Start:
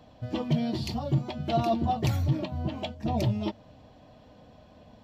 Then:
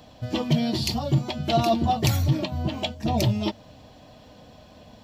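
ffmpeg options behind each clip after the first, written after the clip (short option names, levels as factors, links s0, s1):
-af "highshelf=f=3200:g=10.5,volume=1.58"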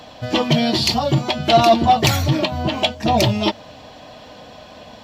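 -filter_complex "[0:a]asplit=2[s0][s1];[s1]highpass=f=720:p=1,volume=3.55,asoftclip=type=tanh:threshold=0.422[s2];[s0][s2]amix=inputs=2:normalize=0,lowpass=f=4100:p=1,volume=0.501,volume=2.24"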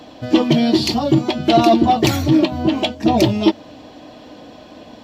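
-af "equalizer=f=310:t=o:w=0.81:g=13.5,volume=0.708"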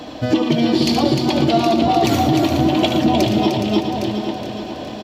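-filter_complex "[0:a]asplit=2[s0][s1];[s1]aecho=0:1:74|115|303|615|810:0.335|0.251|0.562|0.1|0.126[s2];[s0][s2]amix=inputs=2:normalize=0,acompressor=threshold=0.1:ratio=6,asplit=2[s3][s4];[s4]aecho=0:1:417|834|1251|1668|2085|2502:0.355|0.192|0.103|0.0559|0.0302|0.0163[s5];[s3][s5]amix=inputs=2:normalize=0,volume=2.11"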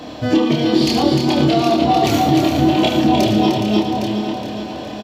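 -filter_complex "[0:a]asplit=2[s0][s1];[s1]adelay=28,volume=0.75[s2];[s0][s2]amix=inputs=2:normalize=0,volume=0.891"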